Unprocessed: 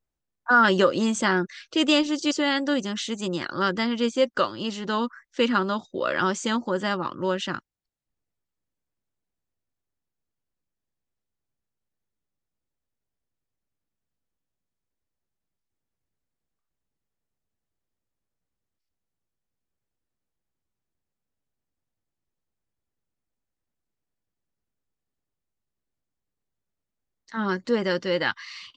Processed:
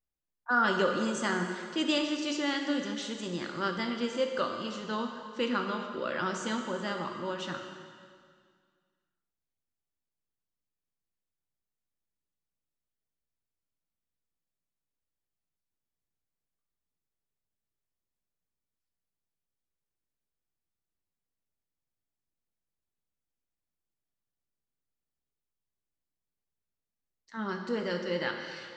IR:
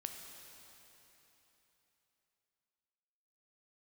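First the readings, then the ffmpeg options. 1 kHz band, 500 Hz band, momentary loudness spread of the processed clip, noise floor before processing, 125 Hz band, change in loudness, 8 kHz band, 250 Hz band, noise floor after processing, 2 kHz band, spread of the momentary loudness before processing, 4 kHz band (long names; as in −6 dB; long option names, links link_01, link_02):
−7.5 dB, −7.5 dB, 9 LU, −85 dBFS, −7.0 dB, −7.5 dB, −7.5 dB, −7.5 dB, below −85 dBFS, −7.5 dB, 9 LU, −7.5 dB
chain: -filter_complex "[1:a]atrim=start_sample=2205,asetrate=79380,aresample=44100[link_01];[0:a][link_01]afir=irnorm=-1:irlink=0"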